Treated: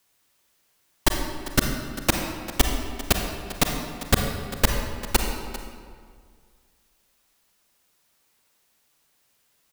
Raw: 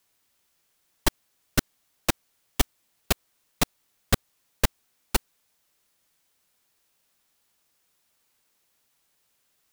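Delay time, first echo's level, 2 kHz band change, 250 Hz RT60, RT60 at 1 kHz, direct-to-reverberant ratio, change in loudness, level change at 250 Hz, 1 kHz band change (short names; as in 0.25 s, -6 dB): 0.397 s, -15.0 dB, +4.5 dB, 2.1 s, 1.9 s, 2.5 dB, +3.0 dB, +5.0 dB, +4.5 dB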